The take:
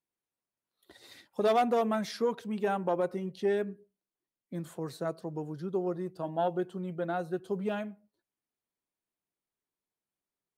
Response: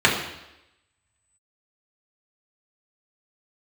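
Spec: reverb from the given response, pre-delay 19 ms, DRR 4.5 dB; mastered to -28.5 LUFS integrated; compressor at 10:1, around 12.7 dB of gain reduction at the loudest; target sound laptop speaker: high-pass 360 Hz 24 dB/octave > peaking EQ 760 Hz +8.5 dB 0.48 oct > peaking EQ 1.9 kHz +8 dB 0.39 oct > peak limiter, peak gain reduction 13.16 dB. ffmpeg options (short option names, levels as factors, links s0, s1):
-filter_complex "[0:a]acompressor=threshold=0.0178:ratio=10,asplit=2[s0][s1];[1:a]atrim=start_sample=2205,adelay=19[s2];[s1][s2]afir=irnorm=-1:irlink=0,volume=0.0501[s3];[s0][s3]amix=inputs=2:normalize=0,highpass=f=360:w=0.5412,highpass=f=360:w=1.3066,equalizer=f=760:t=o:w=0.48:g=8.5,equalizer=f=1900:t=o:w=0.39:g=8,volume=6.68,alimiter=limit=0.106:level=0:latency=1"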